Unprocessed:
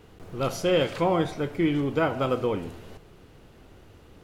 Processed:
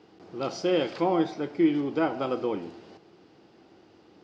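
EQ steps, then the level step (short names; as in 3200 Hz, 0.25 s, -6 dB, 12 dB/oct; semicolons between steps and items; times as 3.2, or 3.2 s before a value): speaker cabinet 180–6200 Hz, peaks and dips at 200 Hz +3 dB, 330 Hz +9 dB, 790 Hz +6 dB, 4900 Hz +8 dB; -5.0 dB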